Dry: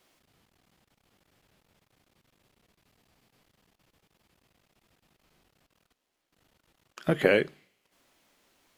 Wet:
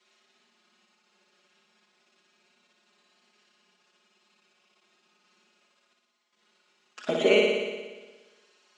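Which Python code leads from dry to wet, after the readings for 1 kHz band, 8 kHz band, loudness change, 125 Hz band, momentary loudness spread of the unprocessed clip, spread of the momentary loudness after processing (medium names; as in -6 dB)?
+0.5 dB, no reading, +1.5 dB, -9.5 dB, 13 LU, 19 LU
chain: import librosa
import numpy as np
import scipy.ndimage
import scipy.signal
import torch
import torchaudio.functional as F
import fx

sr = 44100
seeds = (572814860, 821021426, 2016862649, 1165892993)

p1 = scipy.ndimage.median_filter(x, 5, mode='constant')
p2 = fx.high_shelf(p1, sr, hz=2200.0, db=9.0)
p3 = p2 + 0.97 * np.pad(p2, (int(4.8 * sr / 1000.0), 0))[:len(p2)]
p4 = fx.env_flanger(p3, sr, rest_ms=5.8, full_db=-24.0)
p5 = scipy.signal.sosfilt(scipy.signal.ellip(3, 1.0, 40, [250.0, 7700.0], 'bandpass', fs=sr, output='sos'), p4)
p6 = p5 + fx.room_flutter(p5, sr, wall_m=10.1, rt60_s=1.3, dry=0)
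y = p6 * 10.0 ** (-1.5 / 20.0)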